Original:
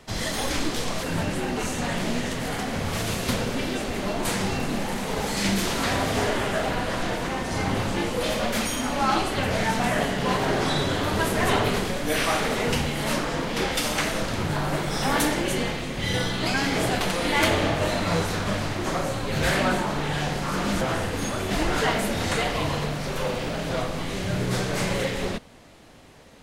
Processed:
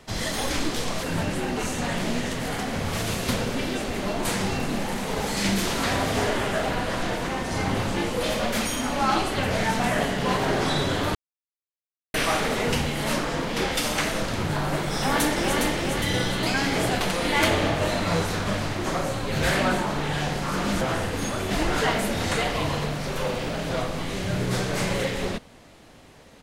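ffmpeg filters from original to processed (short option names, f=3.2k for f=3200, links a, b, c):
-filter_complex "[0:a]asplit=2[a][b];[b]afade=t=in:st=14.95:d=0.01,afade=t=out:st=15.6:d=0.01,aecho=0:1:410|820|1230|1640|2050|2460|2870:0.630957|0.347027|0.190865|0.104976|0.0577365|0.0317551|0.0174653[c];[a][c]amix=inputs=2:normalize=0,asplit=3[d][e][f];[d]atrim=end=11.15,asetpts=PTS-STARTPTS,afade=t=out:st=11.146:d=0.004:c=hsin[g];[e]atrim=start=11.15:end=12.14,asetpts=PTS-STARTPTS,volume=0[h];[f]atrim=start=12.14,asetpts=PTS-STARTPTS,afade=t=in:d=0.004:c=hsin[i];[g][h][i]concat=n=3:v=0:a=1"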